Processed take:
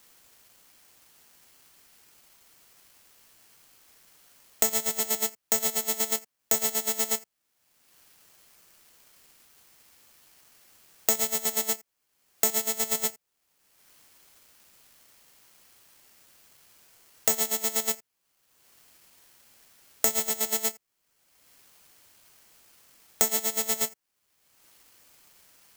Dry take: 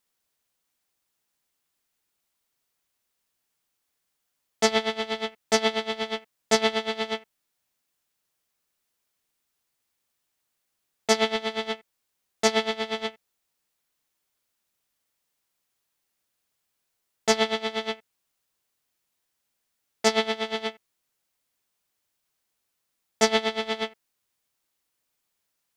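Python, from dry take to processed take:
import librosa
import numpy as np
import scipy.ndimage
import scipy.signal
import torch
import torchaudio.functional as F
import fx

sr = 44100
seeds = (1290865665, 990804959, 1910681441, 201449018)

p1 = fx.level_steps(x, sr, step_db=15)
p2 = x + (p1 * 10.0 ** (1.0 / 20.0))
p3 = (np.kron(scipy.signal.resample_poly(p2, 1, 6), np.eye(6)[0]) * 6)[:len(p2)]
p4 = fx.band_squash(p3, sr, depth_pct=100)
y = p4 * 10.0 ** (-12.0 / 20.0)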